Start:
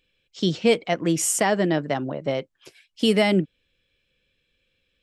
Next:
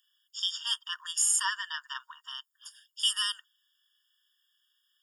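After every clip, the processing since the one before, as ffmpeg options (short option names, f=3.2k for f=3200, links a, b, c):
-filter_complex "[0:a]aemphasis=mode=production:type=75fm,acrossover=split=3400[a][b];[b]acompressor=threshold=-17dB:ratio=4:attack=1:release=60[c];[a][c]amix=inputs=2:normalize=0,afftfilt=real='re*eq(mod(floor(b*sr/1024/930),2),1)':imag='im*eq(mod(floor(b*sr/1024/930),2),1)':win_size=1024:overlap=0.75,volume=-2.5dB"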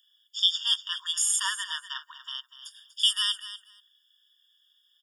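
-af "highpass=800,equalizer=f=3.5k:t=o:w=0.2:g=13.5,aecho=1:1:242|484:0.211|0.0338"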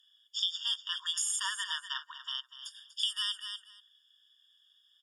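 -af "lowpass=10k,acompressor=threshold=-30dB:ratio=4"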